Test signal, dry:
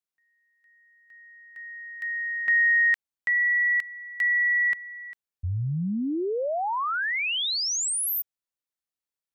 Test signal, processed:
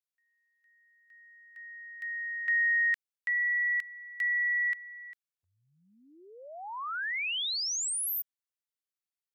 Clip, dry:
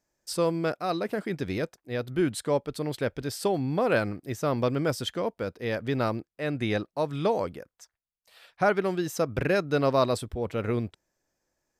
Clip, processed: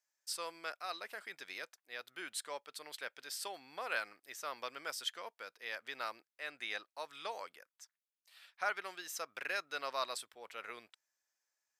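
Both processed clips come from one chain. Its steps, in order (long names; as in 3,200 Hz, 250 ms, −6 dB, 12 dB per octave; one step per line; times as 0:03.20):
high-pass filter 1,300 Hz 12 dB per octave
level −5 dB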